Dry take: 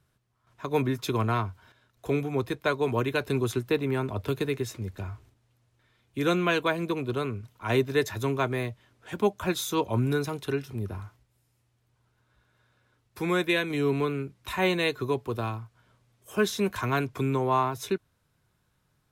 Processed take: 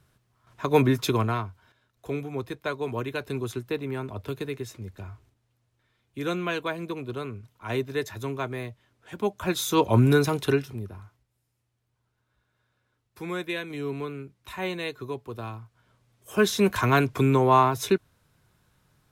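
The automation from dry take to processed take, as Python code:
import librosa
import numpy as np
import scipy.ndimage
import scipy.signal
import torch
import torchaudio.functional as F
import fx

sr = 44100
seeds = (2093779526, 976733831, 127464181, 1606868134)

y = fx.gain(x, sr, db=fx.line((1.02, 6.0), (1.48, -4.0), (9.15, -4.0), (9.91, 7.0), (10.51, 7.0), (10.92, -6.0), (15.32, -6.0), (16.71, 6.0)))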